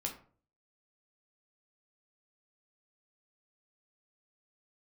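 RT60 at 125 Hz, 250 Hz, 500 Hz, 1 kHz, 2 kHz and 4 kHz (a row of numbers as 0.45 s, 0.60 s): 0.60 s, 0.50 s, 0.50 s, 0.40 s, 0.35 s, 0.25 s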